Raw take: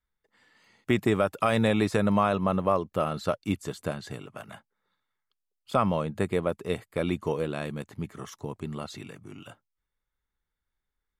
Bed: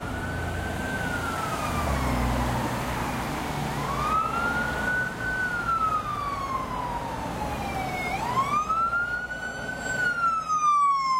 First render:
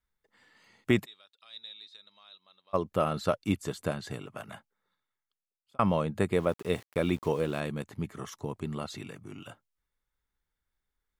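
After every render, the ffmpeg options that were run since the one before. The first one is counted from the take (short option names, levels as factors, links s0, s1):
-filter_complex "[0:a]asplit=3[s0][s1][s2];[s0]afade=t=out:st=1.04:d=0.02[s3];[s1]bandpass=f=3800:t=q:w=18,afade=t=in:st=1.04:d=0.02,afade=t=out:st=2.73:d=0.02[s4];[s2]afade=t=in:st=2.73:d=0.02[s5];[s3][s4][s5]amix=inputs=3:normalize=0,asettb=1/sr,asplit=3[s6][s7][s8];[s6]atrim=end=6.364[s9];[s7]atrim=start=6.36:end=7.6,asetpts=PTS-STARTPTS,afade=t=in:d=0.004:c=qsin,afade=t=out:st=1.236:d=0.004:c=qsin,aeval=exprs='val(0)*gte(abs(val(0)),0.00501)':c=same[s10];[s8]atrim=start=7.596[s11];[s9][s10]acrossfade=d=0.004:c1=hsin:c2=qsin[s12];[s12][s11]acrossfade=d=0.004:c1=qsin:c2=hsin,asplit=2[s13][s14];[s13]atrim=end=5.79,asetpts=PTS-STARTPTS,afade=t=out:st=4.52:d=1.27[s15];[s14]atrim=start=5.79,asetpts=PTS-STARTPTS,afade=t=in:d=0.004:c=hsin[s16];[s15][s16]concat=n=2:v=0:a=1"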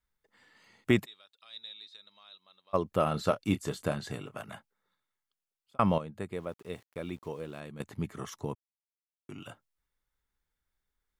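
-filter_complex "[0:a]asettb=1/sr,asplit=3[s0][s1][s2];[s0]atrim=end=3.034[s3];[s1]atrim=start=3.03:end=4.36,asetpts=PTS-STARTPTS,afade=t=in:d=0.004:c=qsin,afade=t=out:st=1.326:d=0.004:c=qsin,asplit=2[s4][s5];[s5]adelay=27,volume=0.251[s6];[s4][s6]amix=inputs=2:normalize=0,atrim=end_sample=58653[s7];[s2]atrim=start=4.356[s8];[s3][s7]acrossfade=d=0.004:c1=hsin:c2=qsin[s9];[s9][s8]acrossfade=d=0.004:c1=qsin:c2=hsin,asplit=5[s10][s11][s12][s13][s14];[s10]atrim=end=5.982[s15];[s11]atrim=start=5.978:end=7.802,asetpts=PTS-STARTPTS,volume=0.299[s16];[s12]atrim=start=7.798:end=8.55,asetpts=PTS-STARTPTS,afade=t=out:st=0.748:d=0.004:c=hsin[s17];[s13]atrim=start=8.55:end=9.29,asetpts=PTS-STARTPTS,volume=0[s18];[s14]atrim=start=9.29,asetpts=PTS-STARTPTS,afade=t=in:d=0.004:c=hsin[s19];[s15][s16]acrossfade=d=0.004:c1=hsin:c2=hsin[s20];[s17][s18][s19]concat=n=3:v=0:a=1[s21];[s20][s21]acrossfade=d=0.004:c1=hsin:c2=hsin"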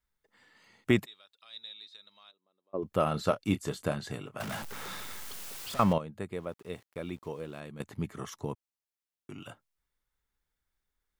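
-filter_complex "[0:a]asplit=3[s0][s1][s2];[s0]afade=t=out:st=2.3:d=0.02[s3];[s1]bandpass=f=340:t=q:w=1.9,afade=t=in:st=2.3:d=0.02,afade=t=out:st=2.82:d=0.02[s4];[s2]afade=t=in:st=2.82:d=0.02[s5];[s3][s4][s5]amix=inputs=3:normalize=0,asettb=1/sr,asplit=3[s6][s7][s8];[s6]atrim=end=4.404[s9];[s7]atrim=start=4.4:end=5.93,asetpts=PTS-STARTPTS,afade=t=in:d=0.004:c=qsin,afade=t=out:st=1.526:d=0.004:c=qsin,aeval=exprs='val(0)+0.5*0.0211*sgn(val(0))':c=same[s10];[s8]atrim=start=5.926[s11];[s9][s10]acrossfade=d=0.004:c1=hsin:c2=qsin[s12];[s12][s11]acrossfade=d=0.004:c1=qsin:c2=hsin"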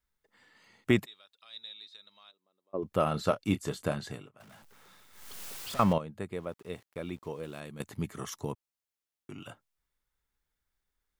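-filter_complex "[0:a]asettb=1/sr,asplit=3[s0][s1][s2];[s0]atrim=end=7.434[s3];[s1]atrim=start=7.43:end=8.52,asetpts=PTS-STARTPTS,afade=t=in:d=0.004:c=qsin,afade=t=out:st=1.086:d=0.004:c=qsin,highshelf=f=4300:g=7[s4];[s2]atrim=start=8.516[s5];[s3][s4]acrossfade=d=0.004:c1=hsin:c2=qsin[s6];[s6][s5]acrossfade=d=0.004:c1=qsin:c2=hsin,asplit=3[s7][s8][s9];[s7]atrim=end=4.35,asetpts=PTS-STARTPTS,afade=t=out:st=4.03:d=0.32:silence=0.125893[s10];[s8]atrim=start=4.35:end=5.12,asetpts=PTS-STARTPTS,volume=0.126[s11];[s9]atrim=start=5.12,asetpts=PTS-STARTPTS,afade=t=in:d=0.32:silence=0.125893[s12];[s10][s11][s12]concat=n=3:v=0:a=1"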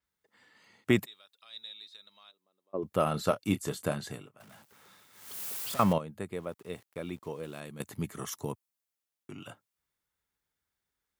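-af "highpass=82,adynamicequalizer=threshold=0.00126:dfrequency=7800:dqfactor=0.7:tfrequency=7800:tqfactor=0.7:attack=5:release=100:ratio=0.375:range=4:mode=boostabove:tftype=highshelf"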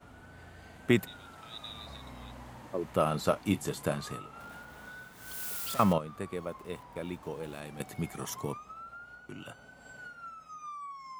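-filter_complex "[1:a]volume=0.0841[s0];[0:a][s0]amix=inputs=2:normalize=0"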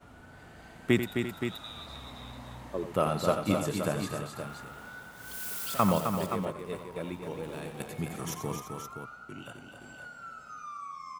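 -af "aecho=1:1:89|261|342|522:0.316|0.473|0.2|0.376"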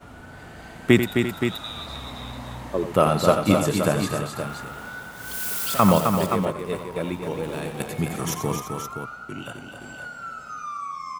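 -af "volume=2.82,alimiter=limit=0.708:level=0:latency=1"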